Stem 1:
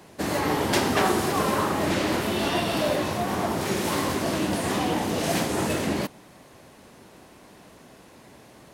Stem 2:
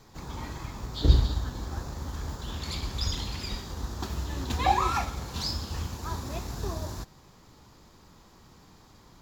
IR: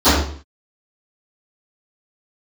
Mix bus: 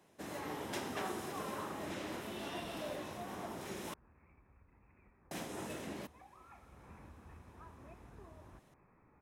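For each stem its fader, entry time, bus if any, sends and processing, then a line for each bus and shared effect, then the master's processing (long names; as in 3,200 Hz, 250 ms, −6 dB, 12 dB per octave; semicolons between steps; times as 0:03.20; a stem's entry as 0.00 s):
−17.5 dB, 0.00 s, muted 0:03.94–0:05.31, no send, notch filter 4,500 Hz, Q 9.1
0:06.33 −20 dB → 0:06.85 −10 dB, 1.55 s, no send, Chebyshev low-pass filter 2,600 Hz, order 10; downward compressor 3 to 1, threshold −42 dBFS, peak gain reduction 21 dB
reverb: not used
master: low-shelf EQ 110 Hz −5.5 dB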